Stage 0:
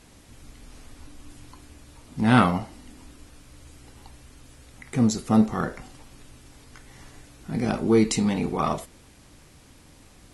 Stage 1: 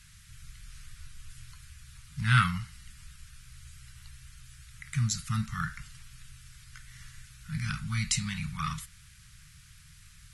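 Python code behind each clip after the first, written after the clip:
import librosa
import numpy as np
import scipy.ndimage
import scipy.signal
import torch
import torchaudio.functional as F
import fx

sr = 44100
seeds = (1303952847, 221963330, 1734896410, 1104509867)

y = scipy.signal.sosfilt(scipy.signal.ellip(3, 1.0, 50, [150.0, 1400.0], 'bandstop', fs=sr, output='sos'), x)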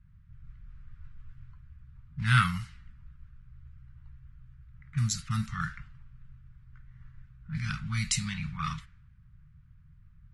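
y = fx.env_lowpass(x, sr, base_hz=510.0, full_db=-25.5)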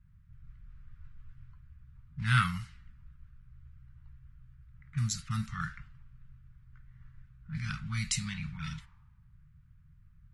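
y = fx.spec_repair(x, sr, seeds[0], start_s=8.6, length_s=0.75, low_hz=420.0, high_hz=1300.0, source='both')
y = F.gain(torch.from_numpy(y), -3.0).numpy()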